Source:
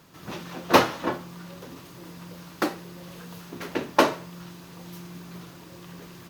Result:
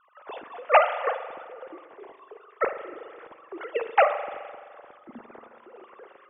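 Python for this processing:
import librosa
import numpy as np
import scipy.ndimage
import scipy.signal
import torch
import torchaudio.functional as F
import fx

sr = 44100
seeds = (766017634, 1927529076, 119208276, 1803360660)

y = fx.sine_speech(x, sr)
y = fx.rev_spring(y, sr, rt60_s=1.9, pass_ms=(42,), chirp_ms=30, drr_db=9.5)
y = fx.env_lowpass(y, sr, base_hz=1400.0, full_db=-22.5)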